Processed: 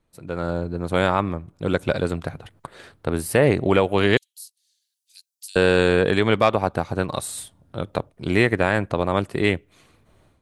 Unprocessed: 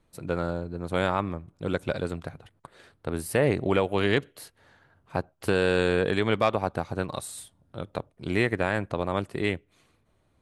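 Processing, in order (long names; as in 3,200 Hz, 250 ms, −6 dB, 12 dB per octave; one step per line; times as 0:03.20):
0:04.17–0:05.56: inverse Chebyshev high-pass filter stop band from 1,100 Hz, stop band 70 dB
automatic gain control gain up to 16.5 dB
level −3.5 dB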